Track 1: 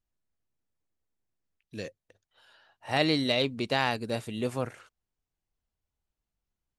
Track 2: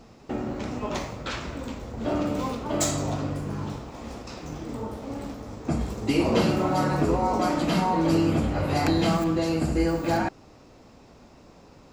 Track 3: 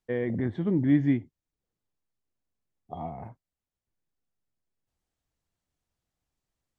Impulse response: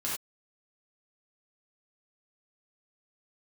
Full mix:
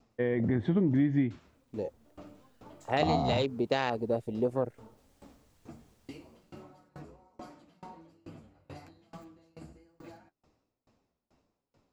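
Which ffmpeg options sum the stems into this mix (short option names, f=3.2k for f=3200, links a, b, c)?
-filter_complex "[0:a]afwtdn=0.02,equalizer=f=460:t=o:w=1.5:g=7,volume=-1.5dB,asplit=2[a][b];[1:a]acompressor=threshold=-25dB:ratio=4,flanger=delay=7:depth=7.1:regen=-32:speed=1.2:shape=triangular,aeval=exprs='val(0)*pow(10,-28*if(lt(mod(2.3*n/s,1),2*abs(2.3)/1000),1-mod(2.3*n/s,1)/(2*abs(2.3)/1000),(mod(2.3*n/s,1)-2*abs(2.3)/1000)/(1-2*abs(2.3)/1000))/20)':c=same,volume=-11.5dB[c];[2:a]dynaudnorm=f=130:g=11:m=16dB,adelay=100,volume=1dB[d];[b]apad=whole_len=526044[e];[c][e]sidechaincompress=threshold=-27dB:ratio=3:attack=5.1:release=341[f];[a][f][d]amix=inputs=3:normalize=0,acompressor=threshold=-23dB:ratio=12"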